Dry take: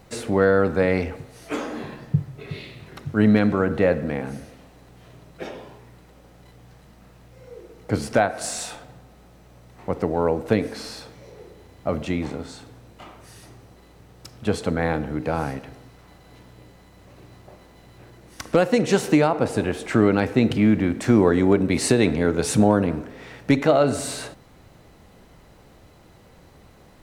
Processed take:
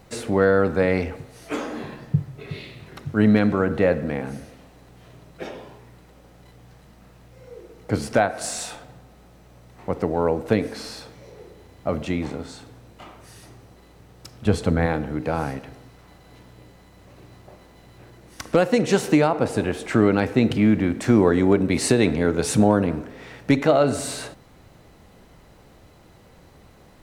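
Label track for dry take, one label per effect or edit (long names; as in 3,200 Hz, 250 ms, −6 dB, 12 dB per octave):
14.450000	14.860000	low-shelf EQ 140 Hz +11 dB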